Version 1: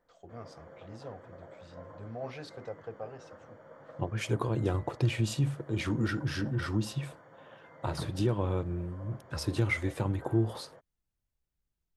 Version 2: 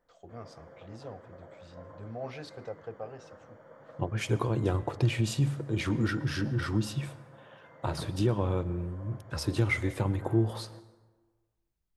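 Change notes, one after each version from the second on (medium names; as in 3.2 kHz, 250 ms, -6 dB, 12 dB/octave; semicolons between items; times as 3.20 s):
background -4.0 dB; reverb: on, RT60 1.4 s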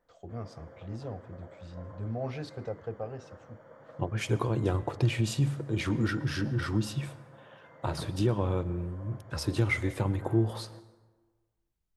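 first voice: add bass shelf 340 Hz +9.5 dB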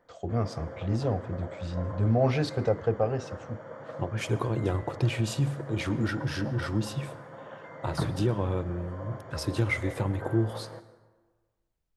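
first voice +11.0 dB; background +10.0 dB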